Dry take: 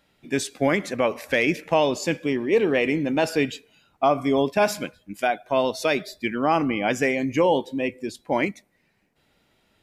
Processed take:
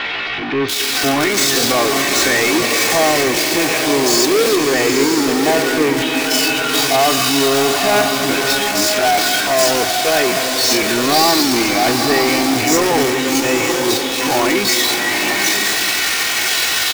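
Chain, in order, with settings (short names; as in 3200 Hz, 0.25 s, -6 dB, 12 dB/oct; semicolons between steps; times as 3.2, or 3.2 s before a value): switching spikes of -13.5 dBFS; air absorption 180 m; comb 2.7 ms, depth 55%; power-law curve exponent 0.35; bands offset in time lows, highs 0.41 s, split 3100 Hz; tempo 0.58×; tilt +1.5 dB/oct; bloom reverb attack 0.96 s, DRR 3.5 dB; gain -1 dB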